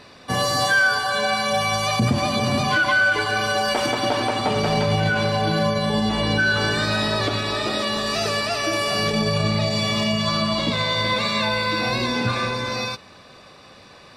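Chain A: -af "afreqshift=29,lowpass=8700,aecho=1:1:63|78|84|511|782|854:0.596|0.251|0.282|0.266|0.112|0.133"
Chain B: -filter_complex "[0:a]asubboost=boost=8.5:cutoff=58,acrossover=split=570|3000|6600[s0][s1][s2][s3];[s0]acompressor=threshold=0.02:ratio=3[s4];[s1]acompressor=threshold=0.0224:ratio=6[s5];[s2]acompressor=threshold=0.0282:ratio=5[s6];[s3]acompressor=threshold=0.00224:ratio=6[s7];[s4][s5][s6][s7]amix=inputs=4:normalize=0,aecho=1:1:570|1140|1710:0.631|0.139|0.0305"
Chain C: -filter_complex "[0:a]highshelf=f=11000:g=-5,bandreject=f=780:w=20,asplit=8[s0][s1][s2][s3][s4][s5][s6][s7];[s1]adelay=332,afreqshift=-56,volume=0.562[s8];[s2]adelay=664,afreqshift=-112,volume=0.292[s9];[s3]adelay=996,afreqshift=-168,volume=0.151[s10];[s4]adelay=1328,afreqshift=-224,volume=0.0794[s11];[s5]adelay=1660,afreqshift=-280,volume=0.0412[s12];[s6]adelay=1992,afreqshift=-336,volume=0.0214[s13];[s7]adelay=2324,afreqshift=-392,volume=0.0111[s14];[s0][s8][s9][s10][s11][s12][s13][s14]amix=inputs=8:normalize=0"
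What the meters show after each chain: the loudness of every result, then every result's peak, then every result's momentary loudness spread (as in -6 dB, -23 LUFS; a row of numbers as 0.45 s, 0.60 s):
-18.5 LUFS, -26.5 LUFS, -19.5 LUFS; -5.5 dBFS, -14.5 dBFS, -7.5 dBFS; 4 LU, 2 LU, 5 LU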